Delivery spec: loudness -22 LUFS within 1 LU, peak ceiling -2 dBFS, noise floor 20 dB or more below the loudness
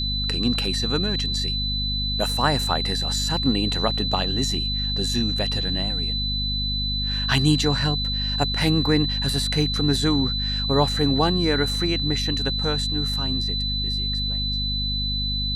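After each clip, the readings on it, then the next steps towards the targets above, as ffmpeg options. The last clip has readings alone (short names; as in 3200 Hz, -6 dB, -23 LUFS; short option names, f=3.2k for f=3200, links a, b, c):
hum 50 Hz; harmonics up to 250 Hz; hum level -25 dBFS; steady tone 4000 Hz; tone level -25 dBFS; loudness -22.0 LUFS; peak -6.0 dBFS; loudness target -22.0 LUFS
-> -af "bandreject=f=50:t=h:w=6,bandreject=f=100:t=h:w=6,bandreject=f=150:t=h:w=6,bandreject=f=200:t=h:w=6,bandreject=f=250:t=h:w=6"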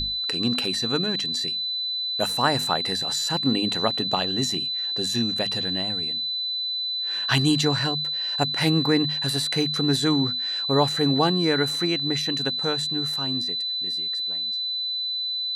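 hum none; steady tone 4000 Hz; tone level -25 dBFS
-> -af "bandreject=f=4k:w=30"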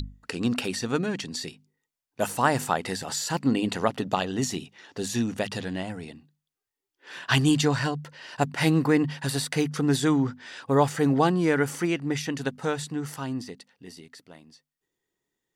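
steady tone none; loudness -26.5 LUFS; peak -7.5 dBFS; loudness target -22.0 LUFS
-> -af "volume=4.5dB"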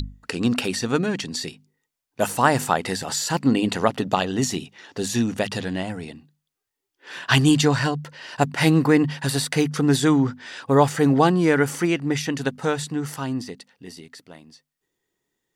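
loudness -22.0 LUFS; peak -3.0 dBFS; noise floor -83 dBFS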